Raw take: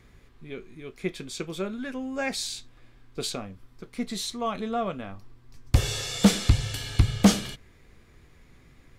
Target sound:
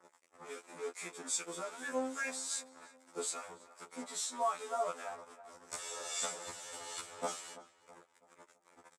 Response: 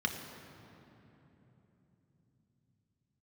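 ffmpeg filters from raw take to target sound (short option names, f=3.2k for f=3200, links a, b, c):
-filter_complex "[0:a]asettb=1/sr,asplit=3[a][b][c];[a]atrim=end=0.694[d];[b]atrim=start=0.69:end=3.34,asetpts=PTS-STARTPTS,afade=t=in:d=0.004:c=qsin,afade=t=out:st=2.646:d=0.004:c=qsin,highshelf=f=5.5k:g=11[e];[c]atrim=start=3.336[f];[d][e]acrossfade=d=0.004:c1=hsin:c2=qsin[g];[g][f]acrossfade=d=0.004:c1=qsin:c2=hsin,acompressor=threshold=-39dB:ratio=2.5,acrusher=bits=4:mode=log:mix=0:aa=0.000001,acrossover=split=1300[h][i];[h]aeval=exprs='val(0)*(1-0.7/2+0.7/2*cos(2*PI*2.5*n/s))':c=same[j];[i]aeval=exprs='val(0)*(1-0.7/2-0.7/2*cos(2*PI*2.5*n/s))':c=same[k];[j][k]amix=inputs=2:normalize=0,acrusher=bits=7:mix=0:aa=0.5,highpass=420,equalizer=f=550:t=q:w=4:g=6,equalizer=f=900:t=q:w=4:g=8,equalizer=f=1.3k:t=q:w=4:g=7,equalizer=f=2.9k:t=q:w=4:g=-6,equalizer=f=4.2k:t=q:w=4:g=-6,equalizer=f=7.8k:t=q:w=4:g=9,lowpass=f=10k:w=0.5412,lowpass=f=10k:w=1.3066,asplit=2[l][m];[m]adelay=329,lowpass=f=2.1k:p=1,volume=-15.5dB,asplit=2[n][o];[o]adelay=329,lowpass=f=2.1k:p=1,volume=0.45,asplit=2[p][q];[q]adelay=329,lowpass=f=2.1k:p=1,volume=0.45,asplit=2[r][s];[s]adelay=329,lowpass=f=2.1k:p=1,volume=0.45[t];[l][n][p][r][t]amix=inputs=5:normalize=0,afftfilt=real='re*2*eq(mod(b,4),0)':imag='im*2*eq(mod(b,4),0)':win_size=2048:overlap=0.75,volume=4.5dB"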